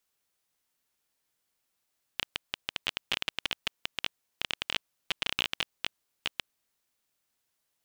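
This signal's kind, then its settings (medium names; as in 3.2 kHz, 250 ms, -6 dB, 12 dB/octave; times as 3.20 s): random clicks 15 per s -11 dBFS 4.26 s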